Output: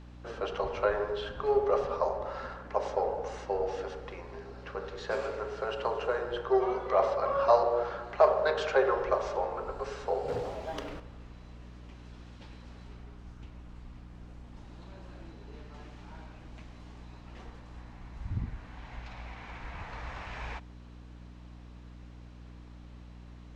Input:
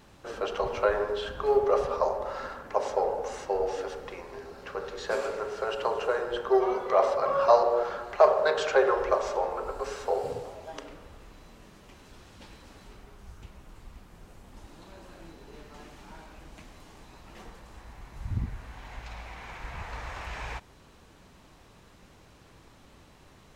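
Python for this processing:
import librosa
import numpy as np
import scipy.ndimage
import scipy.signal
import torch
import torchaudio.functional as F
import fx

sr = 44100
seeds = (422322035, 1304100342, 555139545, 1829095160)

y = scipy.signal.sosfilt(scipy.signal.butter(2, 5300.0, 'lowpass', fs=sr, output='sos'), x)
y = fx.leveller(y, sr, passes=2, at=(10.28, 11.0))
y = fx.add_hum(y, sr, base_hz=60, snr_db=15)
y = F.gain(torch.from_numpy(y), -3.0).numpy()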